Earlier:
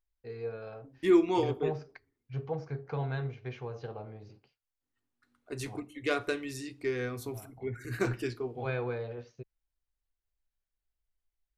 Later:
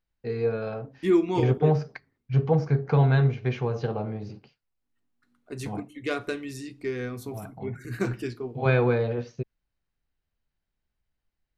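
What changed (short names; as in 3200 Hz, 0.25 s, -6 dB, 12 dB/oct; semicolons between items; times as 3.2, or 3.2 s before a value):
first voice +10.5 dB; master: add bell 190 Hz +9 dB 0.85 oct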